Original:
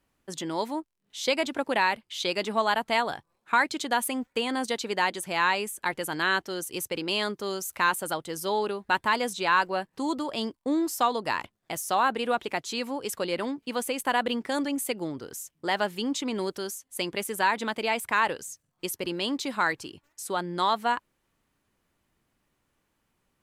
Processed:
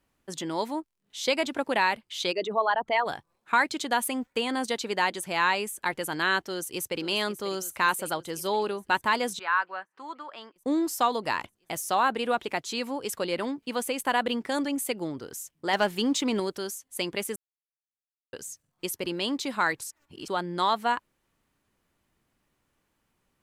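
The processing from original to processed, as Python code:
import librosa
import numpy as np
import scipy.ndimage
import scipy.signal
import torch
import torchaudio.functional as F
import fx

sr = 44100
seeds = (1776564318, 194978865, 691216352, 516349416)

y = fx.envelope_sharpen(x, sr, power=2.0, at=(2.31, 3.05), fade=0.02)
y = fx.echo_throw(y, sr, start_s=6.42, length_s=0.59, ms=540, feedback_pct=70, wet_db=-13.5)
y = fx.bandpass_q(y, sr, hz=1400.0, q=1.9, at=(9.39, 10.56))
y = fx.leveller(y, sr, passes=1, at=(15.73, 16.4))
y = fx.edit(y, sr, fx.silence(start_s=17.36, length_s=0.97),
    fx.reverse_span(start_s=19.81, length_s=0.47), tone=tone)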